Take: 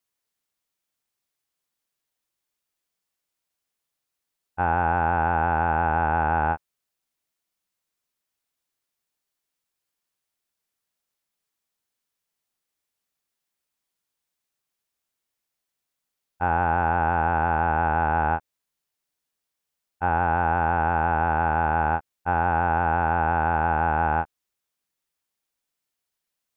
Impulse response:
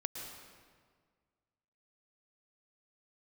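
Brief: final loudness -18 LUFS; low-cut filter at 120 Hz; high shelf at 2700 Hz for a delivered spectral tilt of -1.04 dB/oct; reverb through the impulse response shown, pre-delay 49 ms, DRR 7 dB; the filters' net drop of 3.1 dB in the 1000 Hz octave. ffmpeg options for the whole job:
-filter_complex "[0:a]highpass=120,equalizer=f=1k:t=o:g=-5,highshelf=f=2.7k:g=7,asplit=2[a][b];[1:a]atrim=start_sample=2205,adelay=49[c];[b][c]afir=irnorm=-1:irlink=0,volume=-7.5dB[d];[a][d]amix=inputs=2:normalize=0,volume=7dB"

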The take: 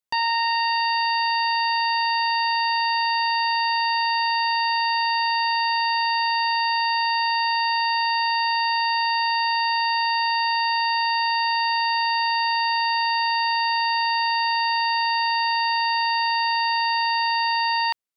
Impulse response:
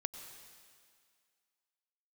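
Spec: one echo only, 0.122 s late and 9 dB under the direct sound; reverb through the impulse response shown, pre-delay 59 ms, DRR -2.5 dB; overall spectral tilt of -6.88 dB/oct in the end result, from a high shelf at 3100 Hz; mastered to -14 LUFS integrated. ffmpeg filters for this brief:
-filter_complex "[0:a]highshelf=f=3.1k:g=-5.5,aecho=1:1:122:0.355,asplit=2[a][b];[1:a]atrim=start_sample=2205,adelay=59[c];[b][c]afir=irnorm=-1:irlink=0,volume=3dB[d];[a][d]amix=inputs=2:normalize=0,volume=7.5dB"

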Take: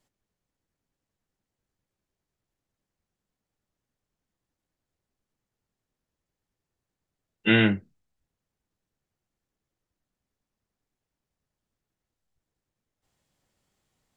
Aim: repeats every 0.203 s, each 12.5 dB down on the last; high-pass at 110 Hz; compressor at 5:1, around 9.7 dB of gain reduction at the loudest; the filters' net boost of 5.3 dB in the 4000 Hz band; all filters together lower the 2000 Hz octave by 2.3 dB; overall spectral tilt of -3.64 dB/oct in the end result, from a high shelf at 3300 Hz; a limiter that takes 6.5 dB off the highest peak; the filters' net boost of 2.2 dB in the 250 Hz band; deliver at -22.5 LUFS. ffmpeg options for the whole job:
-af "highpass=110,equalizer=f=250:t=o:g=3,equalizer=f=2k:t=o:g=-8.5,highshelf=f=3.3k:g=7,equalizer=f=4k:t=o:g=7,acompressor=threshold=-25dB:ratio=5,alimiter=limit=-19dB:level=0:latency=1,aecho=1:1:203|406|609:0.237|0.0569|0.0137,volume=11dB"

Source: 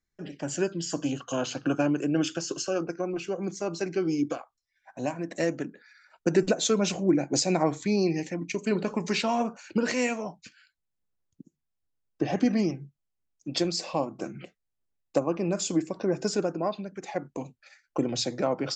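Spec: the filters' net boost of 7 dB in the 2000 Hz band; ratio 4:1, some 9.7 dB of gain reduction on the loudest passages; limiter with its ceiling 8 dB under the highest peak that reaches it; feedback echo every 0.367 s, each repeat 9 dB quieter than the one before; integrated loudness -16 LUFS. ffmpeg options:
-af "equalizer=f=2k:t=o:g=9,acompressor=threshold=-29dB:ratio=4,alimiter=level_in=0.5dB:limit=-24dB:level=0:latency=1,volume=-0.5dB,aecho=1:1:367|734|1101|1468:0.355|0.124|0.0435|0.0152,volume=19.5dB"

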